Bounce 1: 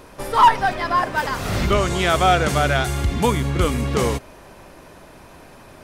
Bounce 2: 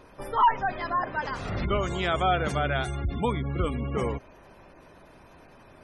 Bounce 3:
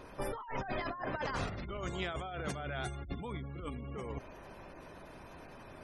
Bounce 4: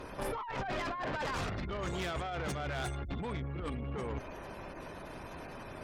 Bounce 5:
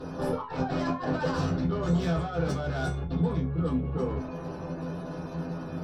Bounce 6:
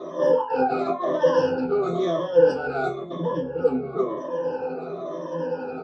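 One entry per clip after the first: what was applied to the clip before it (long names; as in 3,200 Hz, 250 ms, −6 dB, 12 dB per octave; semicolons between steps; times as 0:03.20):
gate on every frequency bin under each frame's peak −25 dB strong; level −8 dB
brickwall limiter −24 dBFS, peak gain reduction 11.5 dB; compressor whose output falls as the input rises −35 dBFS, ratio −0.5; level −3 dB
tube saturation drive 40 dB, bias 0.4; level +7.5 dB
tuned comb filter 85 Hz, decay 0.21 s, harmonics all, mix 80%; convolution reverb RT60 0.15 s, pre-delay 3 ms, DRR −5 dB
rippled gain that drifts along the octave scale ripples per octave 1.2, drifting −0.99 Hz, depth 23 dB; loudspeaker in its box 310–5,500 Hz, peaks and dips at 360 Hz +6 dB, 520 Hz +9 dB, 880 Hz +3 dB, 2,100 Hz −7 dB, 4,200 Hz −9 dB; single-tap delay 1,123 ms −22 dB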